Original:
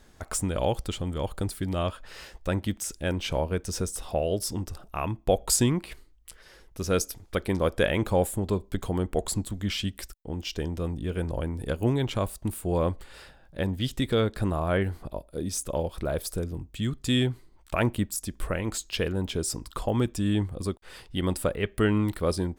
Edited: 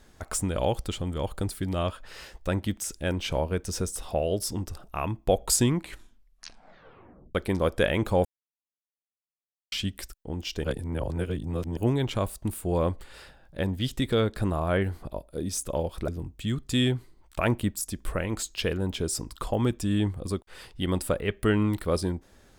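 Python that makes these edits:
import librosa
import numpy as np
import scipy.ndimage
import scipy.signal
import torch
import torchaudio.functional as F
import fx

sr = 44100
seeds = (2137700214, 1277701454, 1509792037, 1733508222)

y = fx.edit(x, sr, fx.tape_stop(start_s=5.73, length_s=1.62),
    fx.silence(start_s=8.25, length_s=1.47),
    fx.reverse_span(start_s=10.64, length_s=1.13),
    fx.cut(start_s=16.08, length_s=0.35), tone=tone)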